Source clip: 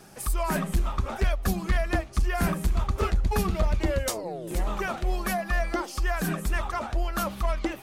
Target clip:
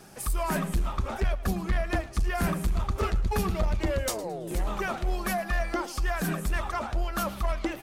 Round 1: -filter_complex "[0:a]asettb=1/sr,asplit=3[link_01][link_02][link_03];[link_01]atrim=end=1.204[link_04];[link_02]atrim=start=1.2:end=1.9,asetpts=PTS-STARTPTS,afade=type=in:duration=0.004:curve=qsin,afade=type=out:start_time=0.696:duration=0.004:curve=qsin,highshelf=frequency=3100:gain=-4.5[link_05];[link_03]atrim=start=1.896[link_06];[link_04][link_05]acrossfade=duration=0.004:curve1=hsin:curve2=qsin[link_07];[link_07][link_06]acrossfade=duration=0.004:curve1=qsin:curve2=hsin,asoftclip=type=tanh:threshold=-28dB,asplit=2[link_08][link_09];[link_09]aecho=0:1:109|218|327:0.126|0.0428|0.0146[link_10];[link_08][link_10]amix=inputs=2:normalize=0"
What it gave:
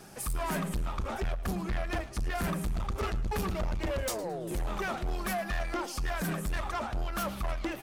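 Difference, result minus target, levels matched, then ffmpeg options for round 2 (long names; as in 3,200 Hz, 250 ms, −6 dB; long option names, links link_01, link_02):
soft clipping: distortion +11 dB
-filter_complex "[0:a]asettb=1/sr,asplit=3[link_01][link_02][link_03];[link_01]atrim=end=1.204[link_04];[link_02]atrim=start=1.2:end=1.9,asetpts=PTS-STARTPTS,afade=type=in:duration=0.004:curve=qsin,afade=type=out:start_time=0.696:duration=0.004:curve=qsin,highshelf=frequency=3100:gain=-4.5[link_05];[link_03]atrim=start=1.896[link_06];[link_04][link_05]acrossfade=duration=0.004:curve1=hsin:curve2=qsin[link_07];[link_07][link_06]acrossfade=duration=0.004:curve1=qsin:curve2=hsin,asoftclip=type=tanh:threshold=-18.5dB,asplit=2[link_08][link_09];[link_09]aecho=0:1:109|218|327:0.126|0.0428|0.0146[link_10];[link_08][link_10]amix=inputs=2:normalize=0"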